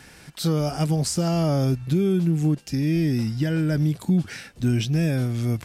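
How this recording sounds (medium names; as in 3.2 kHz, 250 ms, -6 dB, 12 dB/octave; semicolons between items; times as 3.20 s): noise floor -48 dBFS; spectral tilt -7.5 dB/octave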